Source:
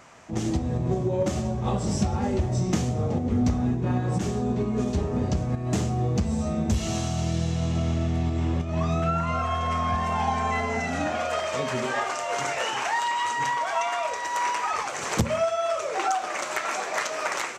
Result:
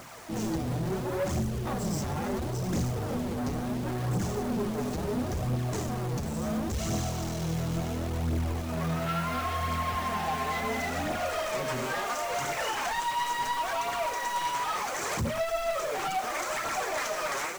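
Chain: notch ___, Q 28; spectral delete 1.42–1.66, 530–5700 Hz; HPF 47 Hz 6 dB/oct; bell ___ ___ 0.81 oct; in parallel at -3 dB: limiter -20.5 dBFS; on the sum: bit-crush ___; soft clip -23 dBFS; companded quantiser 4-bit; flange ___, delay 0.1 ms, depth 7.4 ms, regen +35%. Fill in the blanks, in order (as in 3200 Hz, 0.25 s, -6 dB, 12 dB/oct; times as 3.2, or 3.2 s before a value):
2700 Hz, 3300 Hz, -4 dB, 8-bit, 0.72 Hz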